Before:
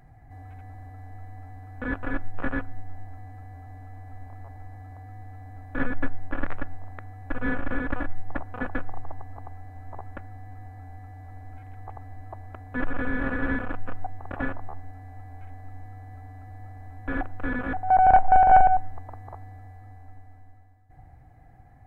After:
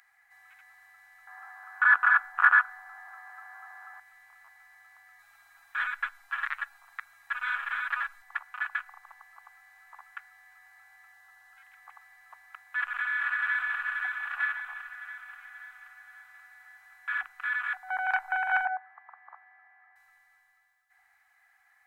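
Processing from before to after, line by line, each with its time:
1.27–4 band shelf 1000 Hz +14.5 dB
5.18–8.22 comb 7.3 ms, depth 98%
11.12–11.71 notch 2300 Hz, Q 7.4
13.02–13.85 echo throw 0.53 s, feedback 55%, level -3.5 dB
14.89–17.71 bands offset in time highs, lows 40 ms, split 380 Hz
18.65–19.96 speaker cabinet 140–2100 Hz, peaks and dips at 260 Hz +4 dB, 490 Hz +6 dB, 730 Hz +5 dB
whole clip: inverse Chebyshev high-pass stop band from 500 Hz, stop band 50 dB; gain +5.5 dB

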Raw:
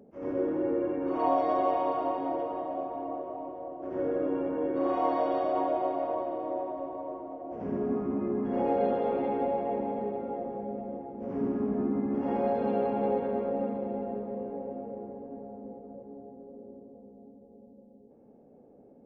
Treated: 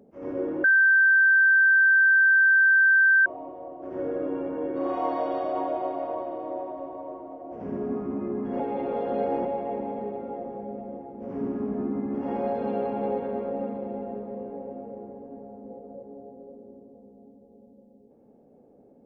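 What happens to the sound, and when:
0.64–3.26 bleep 1560 Hz -15 dBFS
8.6–9.45 reverse
15.7–16.54 bell 550 Hz +5 dB

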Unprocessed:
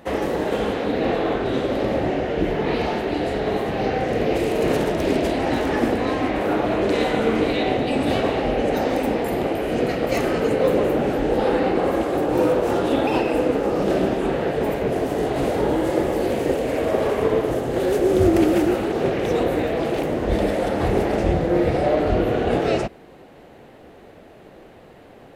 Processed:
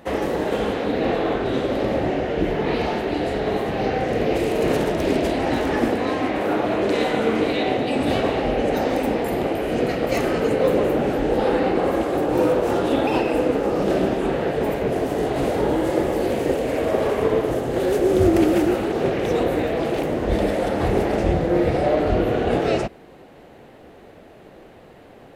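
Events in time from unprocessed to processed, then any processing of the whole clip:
5.88–8 HPF 110 Hz 6 dB/oct

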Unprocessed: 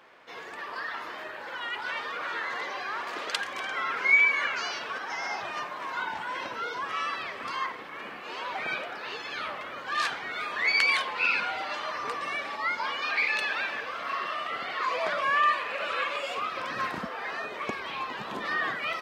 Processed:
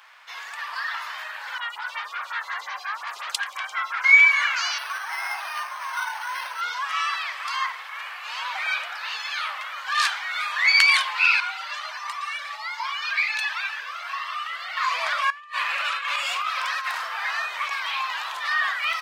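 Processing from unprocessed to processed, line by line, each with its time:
1.58–4.04 photocell phaser 5.6 Hz
4.78–6.61 decimation joined by straight lines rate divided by 6×
11.4–14.77 cascading flanger rising 1.4 Hz
15.3–18.3 negative-ratio compressor -32 dBFS, ratio -0.5
whole clip: HPF 890 Hz 24 dB/oct; high shelf 4000 Hz +7.5 dB; gain +5 dB

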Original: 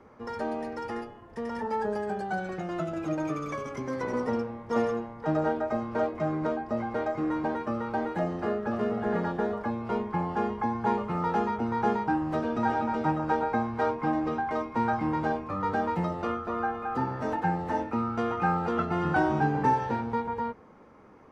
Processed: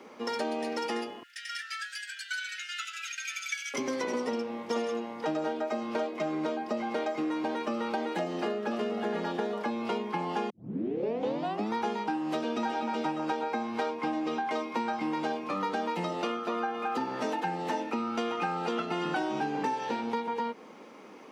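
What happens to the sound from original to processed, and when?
1.23–3.74 brick-wall FIR high-pass 1300 Hz
10.5 tape start 1.25 s
whole clip: HPF 210 Hz 24 dB/oct; resonant high shelf 2100 Hz +8.5 dB, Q 1.5; compressor, threshold -34 dBFS; gain +5.5 dB

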